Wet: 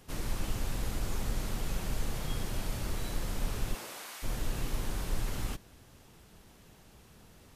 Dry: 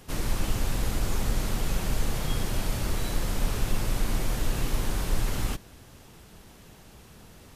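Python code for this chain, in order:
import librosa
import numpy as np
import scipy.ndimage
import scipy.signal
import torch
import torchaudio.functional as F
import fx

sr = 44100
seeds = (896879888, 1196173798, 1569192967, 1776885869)

y = fx.highpass(x, sr, hz=fx.line((3.73, 290.0), (4.22, 1200.0)), slope=12, at=(3.73, 4.22), fade=0.02)
y = y * 10.0 ** (-6.5 / 20.0)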